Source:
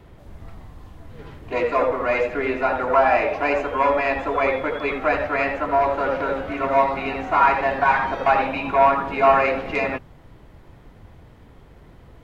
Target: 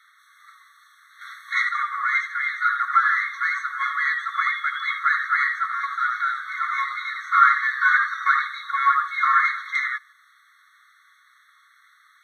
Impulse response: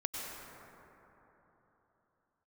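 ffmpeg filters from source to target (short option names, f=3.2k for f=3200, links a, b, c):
-filter_complex "[0:a]asettb=1/sr,asplit=3[a][b][c];[a]atrim=end=1.214[d];[b]atrim=start=1.21:end=1.69,asetpts=PTS-STARTPTS,afade=t=in:d=0.004:c=qsin,afade=t=out:st=0.476:d=0.004:c=qsin,acontrast=75[e];[c]atrim=start=1.686[f];[d][e]acrossfade=d=0.004:c1=hsin:c2=qsin[g];[g][f]acrossfade=d=0.004:c1=qsin:c2=hsin,asplit=2[h][i];[1:a]atrim=start_sample=2205,atrim=end_sample=3969,asetrate=25137,aresample=44100[j];[i][j]afir=irnorm=-1:irlink=0,volume=-3.5dB[k];[h][k]amix=inputs=2:normalize=0,afftfilt=real='re*eq(mod(floor(b*sr/1024/1100),2),1)':imag='im*eq(mod(floor(b*sr/1024/1100),2),1)':win_size=1024:overlap=0.75,volume=1dB"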